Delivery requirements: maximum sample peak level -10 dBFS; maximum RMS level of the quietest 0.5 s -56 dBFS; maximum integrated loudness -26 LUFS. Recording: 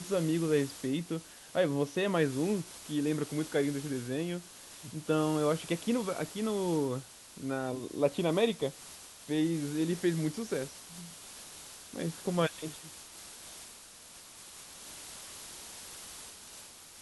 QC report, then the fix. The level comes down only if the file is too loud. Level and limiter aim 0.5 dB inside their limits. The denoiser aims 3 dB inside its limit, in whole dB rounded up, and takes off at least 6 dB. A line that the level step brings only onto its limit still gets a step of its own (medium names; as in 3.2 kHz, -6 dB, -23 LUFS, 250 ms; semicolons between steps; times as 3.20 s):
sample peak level -14.5 dBFS: pass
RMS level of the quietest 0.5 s -52 dBFS: fail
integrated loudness -33.0 LUFS: pass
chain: noise reduction 7 dB, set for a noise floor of -52 dBFS